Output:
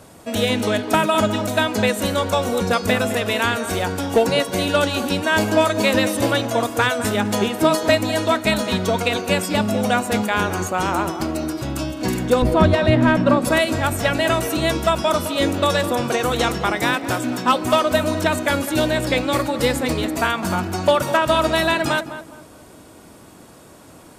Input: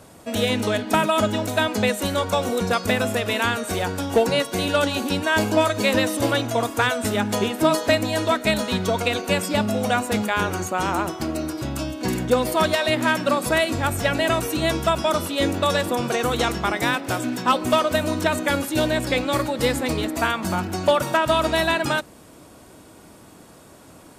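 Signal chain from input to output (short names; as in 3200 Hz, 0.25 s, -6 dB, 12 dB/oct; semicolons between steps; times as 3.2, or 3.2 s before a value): 12.42–13.45 RIAA curve playback; on a send: tape echo 0.208 s, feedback 35%, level -10 dB, low-pass 1500 Hz; on the sum: gain +2 dB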